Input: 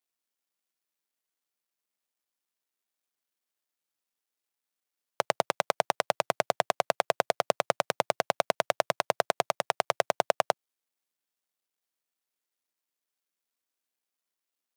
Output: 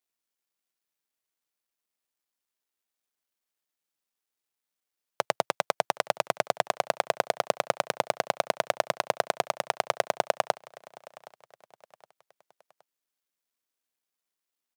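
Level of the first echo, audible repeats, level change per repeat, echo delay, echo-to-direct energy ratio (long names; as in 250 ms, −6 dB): −21.5 dB, 2, −7.5 dB, 768 ms, −20.5 dB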